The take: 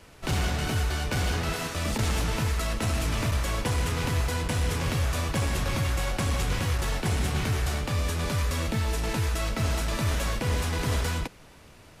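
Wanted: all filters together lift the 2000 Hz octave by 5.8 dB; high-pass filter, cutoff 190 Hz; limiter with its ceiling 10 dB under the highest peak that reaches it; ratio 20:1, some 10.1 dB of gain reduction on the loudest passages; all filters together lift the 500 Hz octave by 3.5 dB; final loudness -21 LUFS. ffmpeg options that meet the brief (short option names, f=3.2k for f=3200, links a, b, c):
-af "highpass=190,equalizer=f=500:t=o:g=4,equalizer=f=2k:t=o:g=7,acompressor=threshold=-34dB:ratio=20,volume=18.5dB,alimiter=limit=-12dB:level=0:latency=1"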